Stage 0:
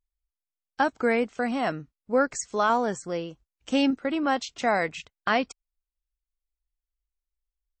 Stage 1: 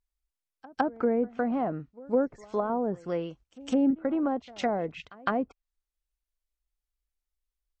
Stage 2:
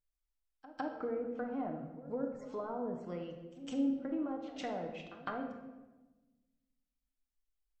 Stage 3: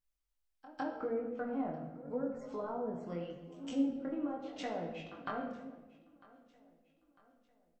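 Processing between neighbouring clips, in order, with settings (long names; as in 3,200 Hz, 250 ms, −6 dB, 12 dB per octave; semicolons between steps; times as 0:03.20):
treble cut that deepens with the level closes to 550 Hz, closed at −21.5 dBFS; echo ahead of the sound 158 ms −22 dB
downward compressor 1.5 to 1, threshold −39 dBFS, peak gain reduction 7 dB; on a send at −2 dB: convolution reverb RT60 1.2 s, pre-delay 7 ms; on the sum: level −7.5 dB
chorus effect 0.82 Hz, delay 17.5 ms, depth 6.7 ms; repeating echo 950 ms, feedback 46%, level −22.5 dB; level +3.5 dB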